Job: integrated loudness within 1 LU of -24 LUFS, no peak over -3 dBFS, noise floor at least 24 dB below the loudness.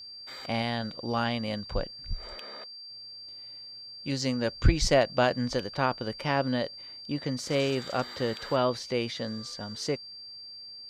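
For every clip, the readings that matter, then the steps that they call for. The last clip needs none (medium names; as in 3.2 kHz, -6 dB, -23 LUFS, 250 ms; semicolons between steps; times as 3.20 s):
steady tone 4.7 kHz; tone level -42 dBFS; loudness -30.0 LUFS; peak level -7.5 dBFS; loudness target -24.0 LUFS
-> band-stop 4.7 kHz, Q 30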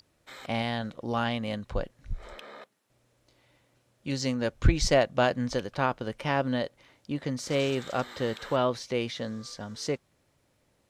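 steady tone not found; loudness -30.0 LUFS; peak level -8.0 dBFS; loudness target -24.0 LUFS
-> trim +6 dB; peak limiter -3 dBFS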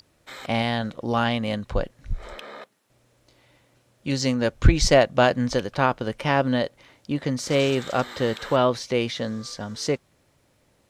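loudness -24.0 LUFS; peak level -3.0 dBFS; noise floor -65 dBFS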